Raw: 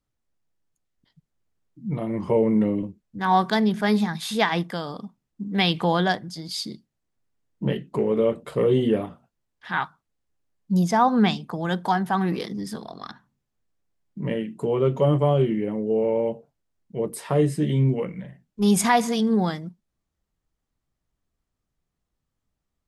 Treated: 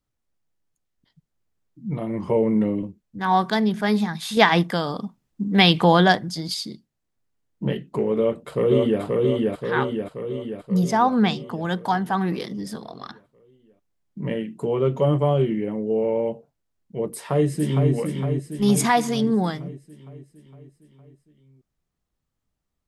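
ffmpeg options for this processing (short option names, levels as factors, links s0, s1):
-filter_complex "[0:a]asplit=2[s0][s1];[s1]afade=t=in:st=8.17:d=0.01,afade=t=out:st=9.02:d=0.01,aecho=0:1:530|1060|1590|2120|2650|3180|3710|4240|4770:0.841395|0.504837|0.302902|0.181741|0.109045|0.0654269|0.0392561|0.0235537|0.0141322[s2];[s0][s2]amix=inputs=2:normalize=0,asplit=2[s3][s4];[s4]afade=t=in:st=17.07:d=0.01,afade=t=out:st=17.93:d=0.01,aecho=0:1:460|920|1380|1840|2300|2760|3220|3680:0.562341|0.337405|0.202443|0.121466|0.0728794|0.0437277|0.0262366|0.015742[s5];[s3][s5]amix=inputs=2:normalize=0,asplit=3[s6][s7][s8];[s6]atrim=end=4.372[s9];[s7]atrim=start=4.368:end=6.542,asetpts=PTS-STARTPTS,volume=2[s10];[s8]atrim=start=6.538[s11];[s9][s10]acrossfade=d=0.004:c1=hsin:c2=hsin[s12];[s12][s11]acrossfade=d=0.004:c1=hsin:c2=hsin"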